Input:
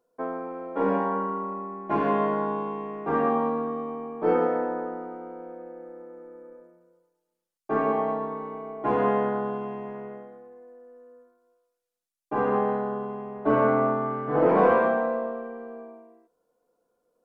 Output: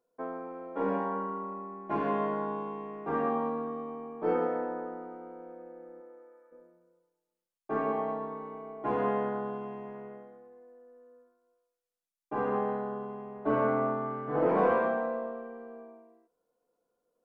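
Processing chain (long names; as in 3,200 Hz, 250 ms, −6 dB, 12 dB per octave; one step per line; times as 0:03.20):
0:06.00–0:06.51: high-pass filter 270 Hz → 900 Hz 12 dB per octave
level −6 dB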